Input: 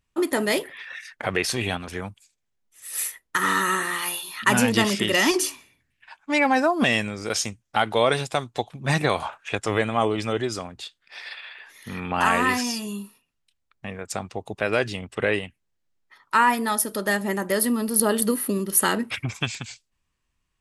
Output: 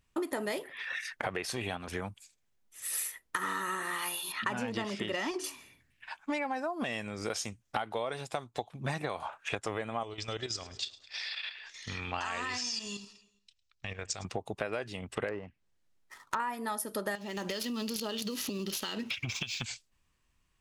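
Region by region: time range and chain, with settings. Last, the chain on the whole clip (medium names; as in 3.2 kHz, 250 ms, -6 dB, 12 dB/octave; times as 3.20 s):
4.32–5.44 s: distance through air 76 m + tape noise reduction on one side only decoder only
10.03–14.25 s: FFT filter 110 Hz 0 dB, 180 Hz -12 dB, 320 Hz -7 dB, 940 Hz -6 dB, 1.6 kHz -3 dB, 5.5 kHz +9 dB, 8 kHz +2 dB, 11 kHz -29 dB + level held to a coarse grid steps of 10 dB + feedback delay 105 ms, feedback 56%, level -21 dB
15.28–16.40 s: dead-time distortion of 0.095 ms + low-pass that closes with the level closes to 1.3 kHz, closed at -23.5 dBFS
17.15–19.62 s: median filter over 5 samples + high-order bell 4.1 kHz +14 dB + compression 10:1, threshold -29 dBFS
whole clip: dynamic bell 770 Hz, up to +5 dB, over -34 dBFS, Q 0.71; compression 8:1, threshold -34 dBFS; trim +2 dB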